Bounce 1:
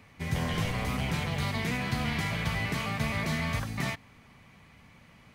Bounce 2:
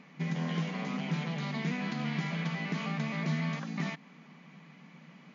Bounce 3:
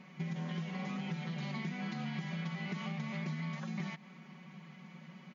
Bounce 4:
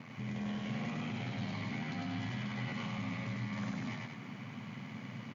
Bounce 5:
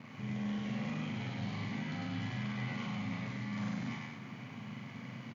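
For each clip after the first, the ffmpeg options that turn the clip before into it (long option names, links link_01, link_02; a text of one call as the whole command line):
ffmpeg -i in.wav -af "acompressor=threshold=-35dB:ratio=2.5,bass=frequency=250:gain=9,treble=frequency=4000:gain=-3,afftfilt=real='re*between(b*sr/4096,150,7200)':imag='im*between(b*sr/4096,150,7200)':win_size=4096:overlap=0.75" out.wav
ffmpeg -i in.wav -af "aecho=1:1:5.4:0.96,acompressor=threshold=-33dB:ratio=6,volume=-3dB" out.wav
ffmpeg -i in.wav -filter_complex "[0:a]alimiter=level_in=15dB:limit=-24dB:level=0:latency=1:release=35,volume=-15dB,aeval=exprs='val(0)*sin(2*PI*42*n/s)':channel_layout=same,asplit=2[link_01][link_02];[link_02]aecho=0:1:102|189.5:0.794|0.447[link_03];[link_01][link_03]amix=inputs=2:normalize=0,volume=7.5dB" out.wav
ffmpeg -i in.wav -filter_complex "[0:a]asplit=2[link_01][link_02];[link_02]adelay=39,volume=-2.5dB[link_03];[link_01][link_03]amix=inputs=2:normalize=0,volume=-2.5dB" out.wav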